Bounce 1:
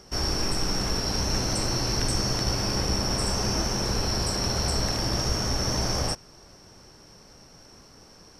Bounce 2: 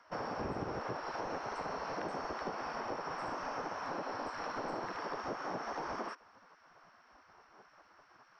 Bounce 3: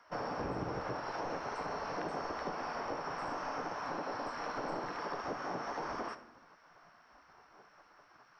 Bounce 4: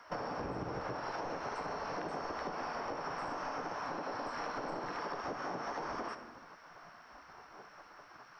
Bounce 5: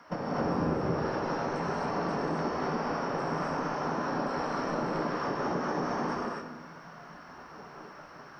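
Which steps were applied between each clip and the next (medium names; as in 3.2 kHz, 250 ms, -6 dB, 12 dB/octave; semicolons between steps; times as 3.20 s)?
low-pass 1.2 kHz 12 dB/octave; spectral gate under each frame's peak -15 dB weak; compression 3:1, threshold -42 dBFS, peak gain reduction 9 dB; trim +4.5 dB
simulated room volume 170 m³, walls mixed, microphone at 0.37 m
compression, threshold -43 dBFS, peak gain reduction 9.5 dB; trim +6.5 dB
peaking EQ 190 Hz +12.5 dB 1.9 oct; hum notches 60/120 Hz; gated-style reverb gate 290 ms rising, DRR -3.5 dB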